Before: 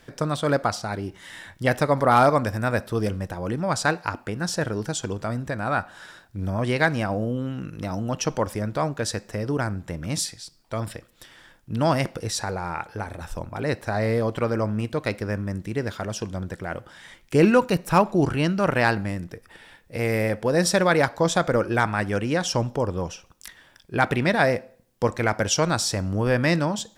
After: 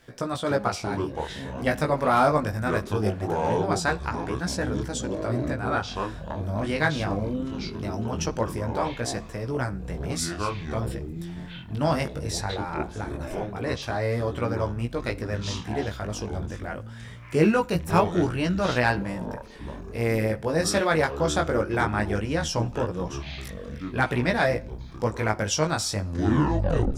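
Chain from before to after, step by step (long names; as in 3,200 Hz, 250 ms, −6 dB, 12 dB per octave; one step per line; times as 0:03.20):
turntable brake at the end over 0.96 s
chorus effect 0.21 Hz, delay 16 ms, depth 3.8 ms
delay with pitch and tempo change per echo 195 ms, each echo −7 semitones, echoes 3, each echo −6 dB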